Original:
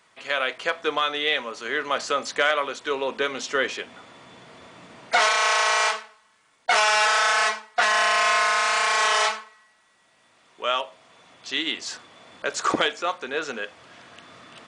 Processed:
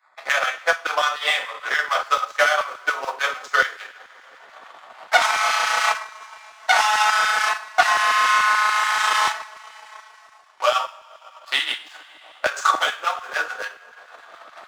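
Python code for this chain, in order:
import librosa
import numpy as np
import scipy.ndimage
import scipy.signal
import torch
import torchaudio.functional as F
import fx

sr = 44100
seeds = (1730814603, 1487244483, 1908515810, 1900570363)

y = fx.wiener(x, sr, points=15)
y = fx.low_shelf_res(y, sr, hz=550.0, db=-9.0, q=1.5)
y = fx.leveller(y, sr, passes=2)
y = fx.rev_double_slope(y, sr, seeds[0], early_s=0.5, late_s=2.1, knee_db=-18, drr_db=-4.5)
y = fx.transient(y, sr, attack_db=9, sustain_db=-7)
y = fx.filter_lfo_highpass(y, sr, shape='saw_down', hz=6.9, low_hz=320.0, high_hz=1500.0, q=0.75)
y = fx.band_squash(y, sr, depth_pct=40)
y = y * librosa.db_to_amplitude(-9.0)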